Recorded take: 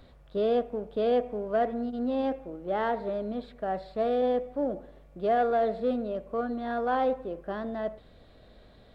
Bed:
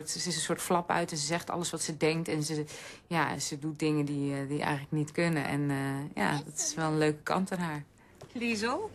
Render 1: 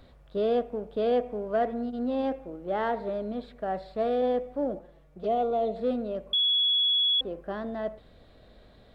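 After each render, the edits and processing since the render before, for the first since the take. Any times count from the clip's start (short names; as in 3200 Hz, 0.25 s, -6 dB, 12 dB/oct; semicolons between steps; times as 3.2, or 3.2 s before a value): 4.79–5.76 envelope flanger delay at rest 7.8 ms, full sweep at -25 dBFS; 6.33–7.21 bleep 3370 Hz -21 dBFS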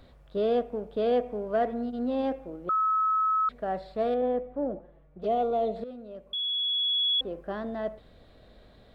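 2.69–3.49 bleep 1290 Hz -22 dBFS; 4.14–5.22 air absorption 480 m; 5.84–7.37 fade in, from -15.5 dB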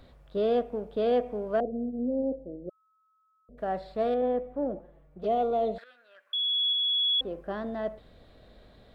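1.6–3.58 elliptic low-pass 610 Hz, stop band 60 dB; 5.78–6.73 resonant high-pass 1600 Hz, resonance Q 7.5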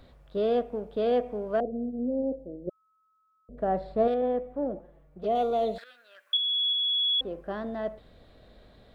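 2.67–4.08 tilt shelf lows +6.5 dB, about 1300 Hz; 5.35–6.37 high shelf 3200 Hz +12 dB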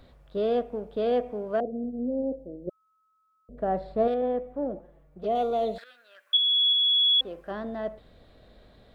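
1.3–1.84 HPF 65 Hz; 6.34–7.51 tilt shelf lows -5 dB, about 820 Hz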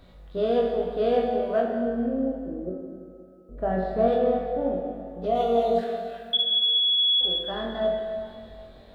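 flutter echo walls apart 3.7 m, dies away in 0.31 s; plate-style reverb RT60 2.3 s, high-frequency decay 0.85×, DRR 1 dB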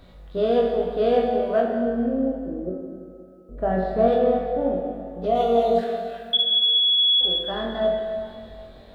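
gain +3 dB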